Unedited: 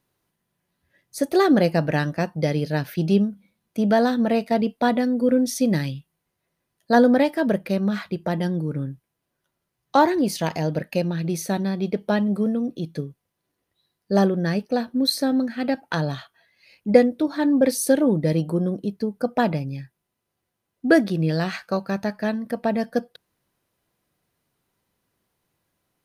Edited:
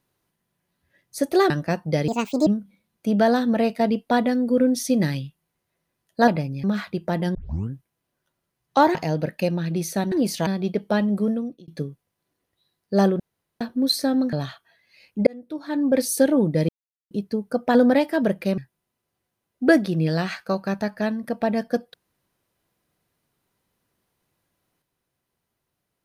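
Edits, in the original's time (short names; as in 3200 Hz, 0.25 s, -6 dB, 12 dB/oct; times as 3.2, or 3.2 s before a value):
1.5–2 cut
2.58–3.18 speed 155%
6.99–7.82 swap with 19.44–19.8
8.53 tape start 0.37 s
10.13–10.48 move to 11.65
12.48–12.86 fade out
14.38–14.79 room tone
15.51–16.02 cut
16.96–17.76 fade in
18.38–18.8 mute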